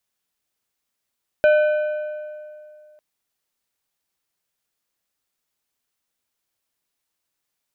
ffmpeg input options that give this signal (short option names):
-f lavfi -i "aevalsrc='0.299*pow(10,-3*t/2.41)*sin(2*PI*606*t)+0.1*pow(10,-3*t/1.831)*sin(2*PI*1515*t)+0.0335*pow(10,-3*t/1.59)*sin(2*PI*2424*t)+0.0112*pow(10,-3*t/1.487)*sin(2*PI*3030*t)+0.00376*pow(10,-3*t/1.374)*sin(2*PI*3939*t)':d=1.55:s=44100"